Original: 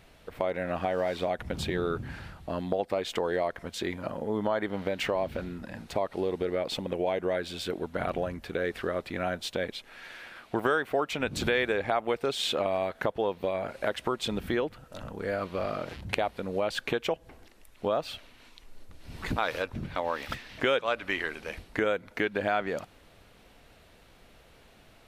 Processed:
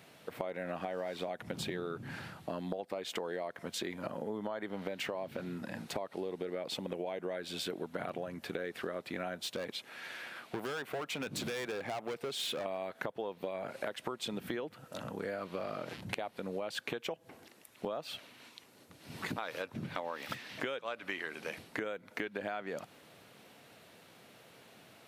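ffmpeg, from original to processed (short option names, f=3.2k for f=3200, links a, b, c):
-filter_complex "[0:a]asplit=3[a][b][c];[a]afade=t=out:st=9.36:d=0.02[d];[b]volume=28dB,asoftclip=hard,volume=-28dB,afade=t=in:st=9.36:d=0.02,afade=t=out:st=12.64:d=0.02[e];[c]afade=t=in:st=12.64:d=0.02[f];[d][e][f]amix=inputs=3:normalize=0,highpass=f=120:w=0.5412,highpass=f=120:w=1.3066,highshelf=f=8.1k:g=4.5,acompressor=threshold=-35dB:ratio=6"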